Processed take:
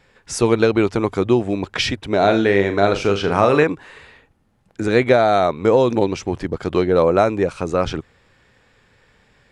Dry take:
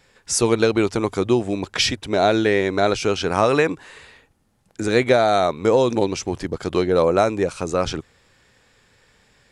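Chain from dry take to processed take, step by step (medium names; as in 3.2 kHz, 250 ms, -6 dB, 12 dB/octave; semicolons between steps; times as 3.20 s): tone controls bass +1 dB, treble -9 dB; 2.17–3.64 s: flutter echo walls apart 6.9 m, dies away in 0.28 s; trim +2 dB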